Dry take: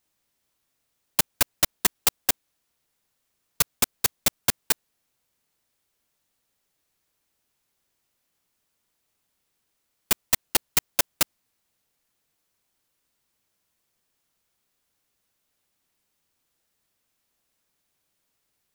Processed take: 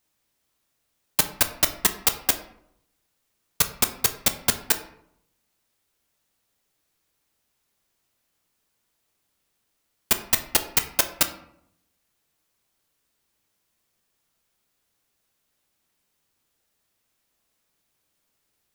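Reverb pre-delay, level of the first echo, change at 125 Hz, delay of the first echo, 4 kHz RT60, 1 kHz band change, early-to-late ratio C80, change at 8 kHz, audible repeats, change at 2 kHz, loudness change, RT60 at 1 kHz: 8 ms, none, +2.0 dB, none, 0.40 s, +2.0 dB, 14.5 dB, +1.5 dB, none, +1.5 dB, +1.5 dB, 0.70 s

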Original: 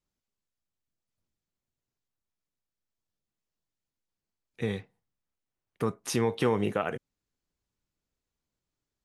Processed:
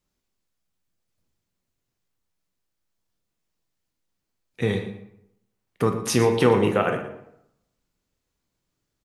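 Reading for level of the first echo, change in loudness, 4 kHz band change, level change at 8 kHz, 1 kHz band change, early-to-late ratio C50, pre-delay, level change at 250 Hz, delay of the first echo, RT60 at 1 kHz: -13.5 dB, +8.0 dB, +8.0 dB, +7.5 dB, +8.0 dB, 8.0 dB, 11 ms, +7.5 dB, 0.117 s, 0.80 s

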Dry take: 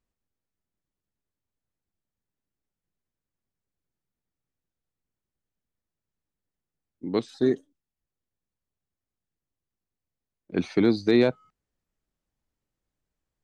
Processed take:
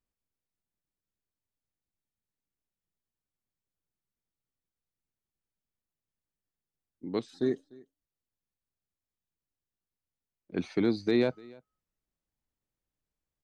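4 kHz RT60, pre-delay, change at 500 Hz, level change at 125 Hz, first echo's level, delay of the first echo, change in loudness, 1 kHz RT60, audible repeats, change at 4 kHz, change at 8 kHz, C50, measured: none, none, -6.0 dB, -6.0 dB, -24.0 dB, 0.297 s, -6.0 dB, none, 1, -6.0 dB, n/a, none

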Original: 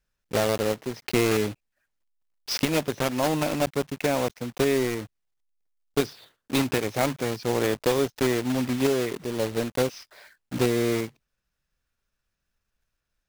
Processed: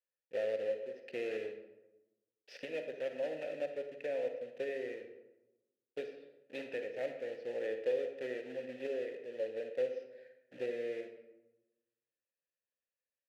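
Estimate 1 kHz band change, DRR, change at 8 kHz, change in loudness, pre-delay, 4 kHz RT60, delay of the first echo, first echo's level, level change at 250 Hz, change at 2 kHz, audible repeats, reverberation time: -23.5 dB, 6.0 dB, under -30 dB, -13.5 dB, 38 ms, 0.55 s, none, none, -23.0 dB, -15.0 dB, none, 1.0 s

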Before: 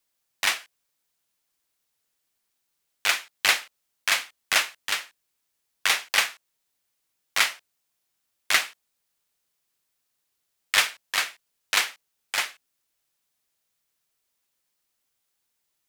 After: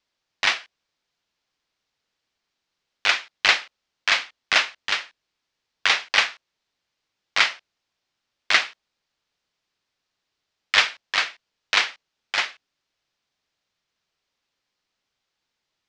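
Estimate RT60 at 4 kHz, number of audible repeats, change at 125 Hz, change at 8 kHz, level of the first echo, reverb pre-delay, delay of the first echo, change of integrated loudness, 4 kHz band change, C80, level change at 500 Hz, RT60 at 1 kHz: none, none, n/a, -5.5 dB, none, none, none, +3.0 dB, +3.0 dB, none, +3.5 dB, none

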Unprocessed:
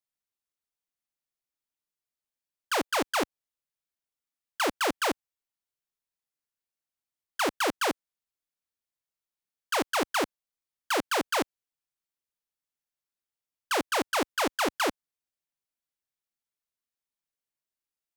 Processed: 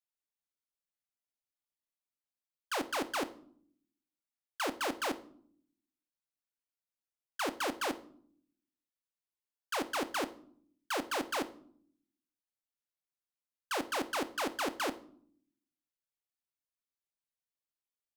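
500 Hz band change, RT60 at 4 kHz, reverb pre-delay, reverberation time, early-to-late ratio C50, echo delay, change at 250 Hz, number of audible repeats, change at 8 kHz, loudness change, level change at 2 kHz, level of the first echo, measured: -7.0 dB, 0.40 s, 3 ms, 0.60 s, 16.0 dB, none, -6.0 dB, none, -7.5 dB, -7.0 dB, -7.5 dB, none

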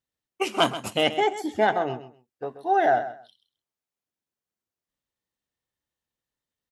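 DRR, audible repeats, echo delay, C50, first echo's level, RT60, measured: none, 2, 0.131 s, none, -13.0 dB, none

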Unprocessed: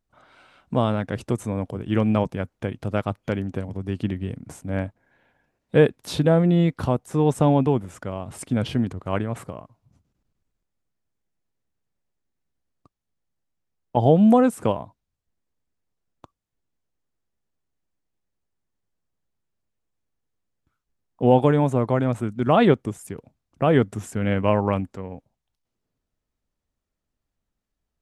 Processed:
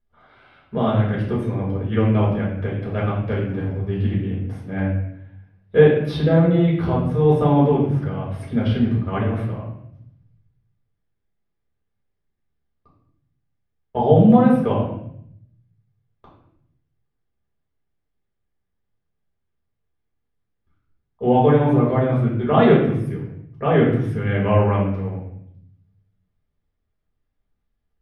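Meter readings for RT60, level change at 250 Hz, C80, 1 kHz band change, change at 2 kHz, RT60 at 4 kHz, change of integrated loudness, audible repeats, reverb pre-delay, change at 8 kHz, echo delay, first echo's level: 0.70 s, +3.0 dB, 6.0 dB, +2.0 dB, +2.5 dB, 0.60 s, +3.0 dB, none, 4 ms, under -15 dB, none, none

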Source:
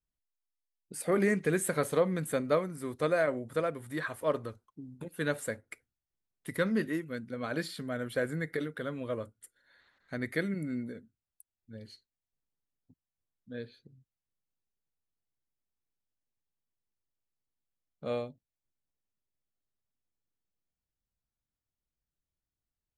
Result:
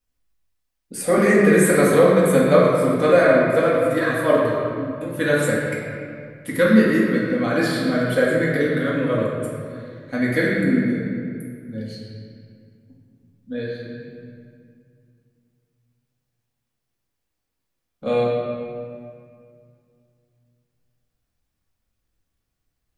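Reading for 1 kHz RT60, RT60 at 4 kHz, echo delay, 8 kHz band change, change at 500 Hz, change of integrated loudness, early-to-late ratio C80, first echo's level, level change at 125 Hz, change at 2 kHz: 2.1 s, 1.5 s, none, +11.0 dB, +15.0 dB, +14.5 dB, 0.5 dB, none, +14.0 dB, +14.5 dB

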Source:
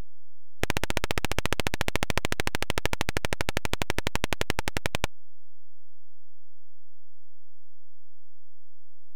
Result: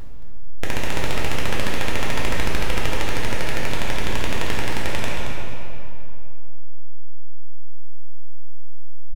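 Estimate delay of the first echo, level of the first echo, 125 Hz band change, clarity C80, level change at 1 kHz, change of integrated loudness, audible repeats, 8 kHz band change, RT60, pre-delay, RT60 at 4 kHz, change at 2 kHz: 0.224 s, -8.0 dB, +7.0 dB, -1.0 dB, +5.0 dB, +4.0 dB, 1, +2.5 dB, 2.9 s, 3 ms, 2.0 s, +4.5 dB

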